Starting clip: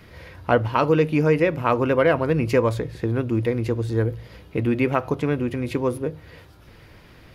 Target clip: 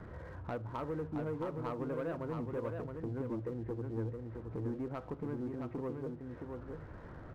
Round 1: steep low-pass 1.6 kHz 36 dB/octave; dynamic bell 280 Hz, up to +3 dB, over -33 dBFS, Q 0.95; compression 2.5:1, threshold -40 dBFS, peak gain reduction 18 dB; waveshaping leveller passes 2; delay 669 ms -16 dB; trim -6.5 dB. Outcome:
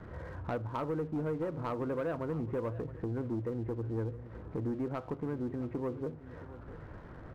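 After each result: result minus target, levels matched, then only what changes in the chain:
echo-to-direct -11 dB; compression: peak gain reduction -4 dB
change: delay 669 ms -5 dB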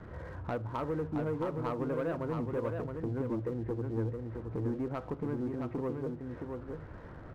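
compression: peak gain reduction -4 dB
change: compression 2.5:1, threshold -47 dBFS, peak gain reduction 22 dB

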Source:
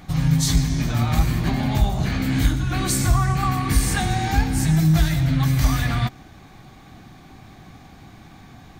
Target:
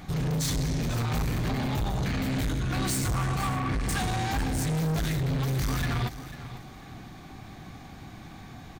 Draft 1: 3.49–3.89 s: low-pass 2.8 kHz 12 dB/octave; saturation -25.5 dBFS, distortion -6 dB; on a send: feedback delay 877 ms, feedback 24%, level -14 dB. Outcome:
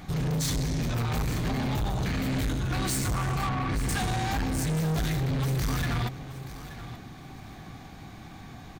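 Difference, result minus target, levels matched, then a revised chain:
echo 382 ms late
3.49–3.89 s: low-pass 2.8 kHz 12 dB/octave; saturation -25.5 dBFS, distortion -6 dB; on a send: feedback delay 495 ms, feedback 24%, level -14 dB

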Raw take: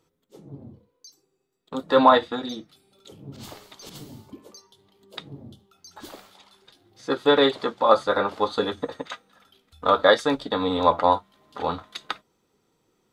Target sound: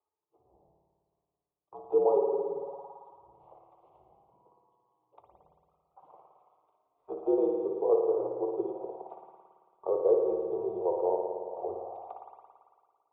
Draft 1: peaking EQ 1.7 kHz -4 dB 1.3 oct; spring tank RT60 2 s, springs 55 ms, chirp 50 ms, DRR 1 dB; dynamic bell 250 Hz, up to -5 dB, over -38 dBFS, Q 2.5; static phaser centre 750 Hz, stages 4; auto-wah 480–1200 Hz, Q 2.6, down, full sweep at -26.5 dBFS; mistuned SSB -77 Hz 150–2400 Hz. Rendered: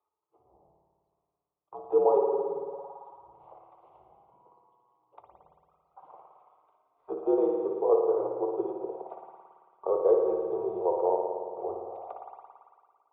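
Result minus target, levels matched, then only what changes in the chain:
2 kHz band +8.0 dB
change: peaking EQ 1.7 kHz -15.5 dB 1.3 oct

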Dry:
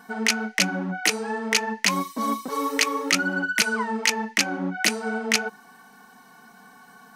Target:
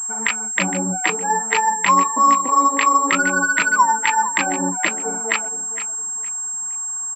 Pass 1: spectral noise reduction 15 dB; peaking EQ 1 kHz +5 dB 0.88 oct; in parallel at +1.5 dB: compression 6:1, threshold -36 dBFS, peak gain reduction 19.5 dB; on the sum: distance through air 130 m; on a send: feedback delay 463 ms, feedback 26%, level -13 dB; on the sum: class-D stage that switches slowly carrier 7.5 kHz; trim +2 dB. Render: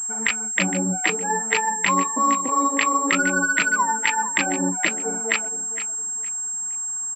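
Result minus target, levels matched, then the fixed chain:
1 kHz band -3.5 dB
spectral noise reduction 15 dB; peaking EQ 1 kHz +13.5 dB 0.88 oct; in parallel at +1.5 dB: compression 6:1, threshold -36 dBFS, peak gain reduction 21.5 dB; on the sum: distance through air 130 m; on a send: feedback delay 463 ms, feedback 26%, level -13 dB; on the sum: class-D stage that switches slowly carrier 7.5 kHz; trim +2 dB

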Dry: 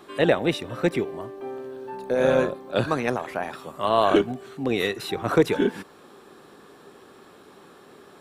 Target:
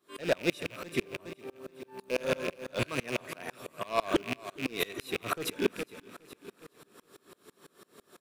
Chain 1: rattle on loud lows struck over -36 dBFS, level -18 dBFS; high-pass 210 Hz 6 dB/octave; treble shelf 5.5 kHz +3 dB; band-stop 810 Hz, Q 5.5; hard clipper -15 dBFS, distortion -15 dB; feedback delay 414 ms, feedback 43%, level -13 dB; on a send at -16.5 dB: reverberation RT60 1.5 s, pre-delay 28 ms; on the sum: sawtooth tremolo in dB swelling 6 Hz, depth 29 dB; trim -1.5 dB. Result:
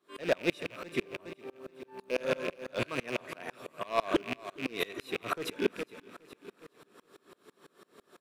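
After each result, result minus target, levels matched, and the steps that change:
8 kHz band -5.0 dB; 125 Hz band -3.0 dB
change: treble shelf 5.5 kHz +12.5 dB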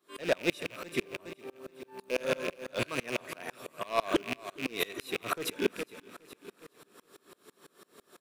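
125 Hz band -3.5 dB
change: high-pass 69 Hz 6 dB/octave

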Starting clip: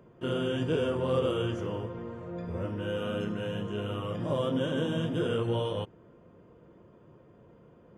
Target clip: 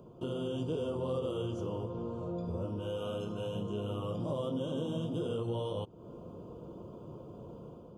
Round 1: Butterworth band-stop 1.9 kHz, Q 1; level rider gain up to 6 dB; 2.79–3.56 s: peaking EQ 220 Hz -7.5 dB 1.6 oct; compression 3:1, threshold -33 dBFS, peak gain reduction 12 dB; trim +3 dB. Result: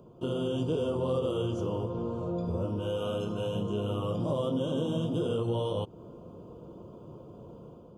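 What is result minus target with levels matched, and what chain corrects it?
compression: peak gain reduction -5 dB
Butterworth band-stop 1.9 kHz, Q 1; level rider gain up to 6 dB; 2.79–3.56 s: peaking EQ 220 Hz -7.5 dB 1.6 oct; compression 3:1, threshold -40.5 dBFS, peak gain reduction 17 dB; trim +3 dB

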